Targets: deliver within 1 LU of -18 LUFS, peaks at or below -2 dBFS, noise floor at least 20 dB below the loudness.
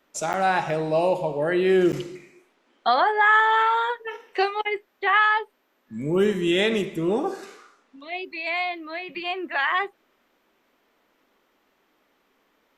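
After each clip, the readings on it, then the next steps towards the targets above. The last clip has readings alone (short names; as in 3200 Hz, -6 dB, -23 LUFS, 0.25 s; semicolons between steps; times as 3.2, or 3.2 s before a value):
dropouts 2; longest dropout 8.4 ms; loudness -23.0 LUFS; peak -8.5 dBFS; loudness target -18.0 LUFS
-> interpolate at 0.33/1.92, 8.4 ms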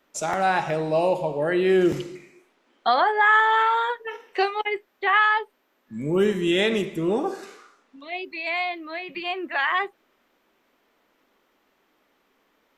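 dropouts 0; loudness -23.0 LUFS; peak -8.5 dBFS; loudness target -18.0 LUFS
-> gain +5 dB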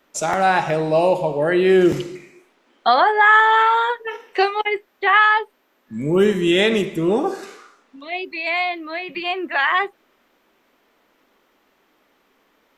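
loudness -18.0 LUFS; peak -3.5 dBFS; noise floor -63 dBFS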